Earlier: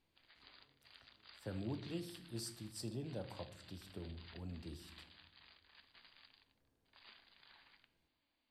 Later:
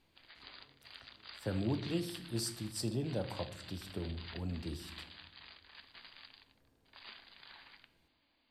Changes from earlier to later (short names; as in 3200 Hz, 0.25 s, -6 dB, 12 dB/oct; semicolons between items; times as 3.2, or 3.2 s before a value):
speech +8.0 dB; background +9.0 dB